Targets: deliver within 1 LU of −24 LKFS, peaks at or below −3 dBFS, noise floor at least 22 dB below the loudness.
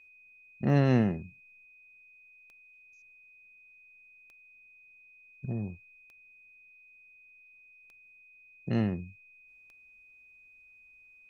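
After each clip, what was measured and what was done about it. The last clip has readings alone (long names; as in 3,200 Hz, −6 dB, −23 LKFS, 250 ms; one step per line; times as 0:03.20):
number of clicks 6; interfering tone 2,500 Hz; level of the tone −55 dBFS; integrated loudness −30.0 LKFS; sample peak −13.0 dBFS; target loudness −24.0 LKFS
→ click removal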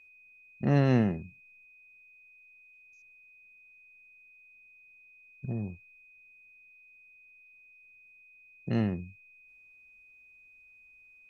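number of clicks 0; interfering tone 2,500 Hz; level of the tone −55 dBFS
→ notch filter 2,500 Hz, Q 30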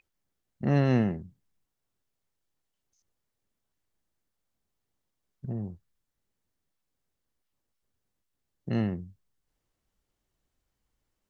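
interfering tone none found; integrated loudness −29.0 LKFS; sample peak −13.0 dBFS; target loudness −24.0 LKFS
→ level +5 dB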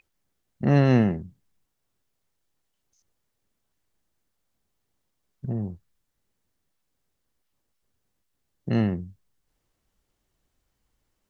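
integrated loudness −24.5 LKFS; sample peak −8.0 dBFS; background noise floor −78 dBFS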